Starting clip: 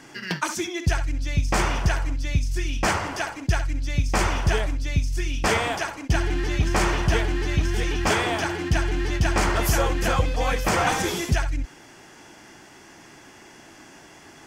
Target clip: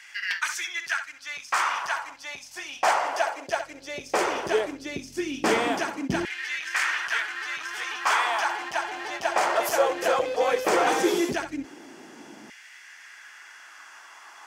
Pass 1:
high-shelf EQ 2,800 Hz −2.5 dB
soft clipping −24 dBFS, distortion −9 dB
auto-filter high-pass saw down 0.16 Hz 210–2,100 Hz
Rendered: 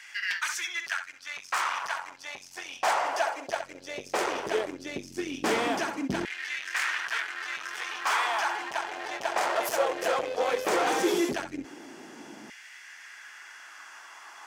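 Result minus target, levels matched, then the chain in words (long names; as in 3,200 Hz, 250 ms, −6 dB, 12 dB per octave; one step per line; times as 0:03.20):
soft clipping: distortion +8 dB
high-shelf EQ 2,800 Hz −2.5 dB
soft clipping −16 dBFS, distortion −17 dB
auto-filter high-pass saw down 0.16 Hz 210–2,100 Hz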